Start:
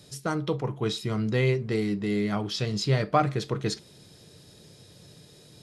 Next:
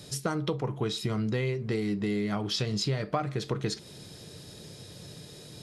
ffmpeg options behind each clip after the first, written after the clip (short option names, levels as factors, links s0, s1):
-af "acompressor=threshold=0.0251:ratio=6,volume=1.88"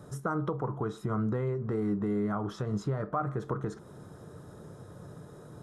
-af "equalizer=f=4600:w=3.4:g=-13.5,alimiter=limit=0.0841:level=0:latency=1:release=121,highshelf=f=1800:t=q:w=3:g=-11.5"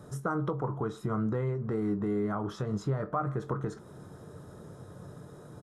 -filter_complex "[0:a]asplit=2[s0][s1];[s1]adelay=22,volume=0.237[s2];[s0][s2]amix=inputs=2:normalize=0"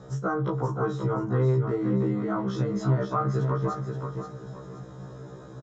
-filter_complex "[0:a]aresample=16000,aresample=44100,asplit=2[s0][s1];[s1]aecho=0:1:528|1056|1584|2112:0.501|0.16|0.0513|0.0164[s2];[s0][s2]amix=inputs=2:normalize=0,afftfilt=real='re*1.73*eq(mod(b,3),0)':imag='im*1.73*eq(mod(b,3),0)':win_size=2048:overlap=0.75,volume=2"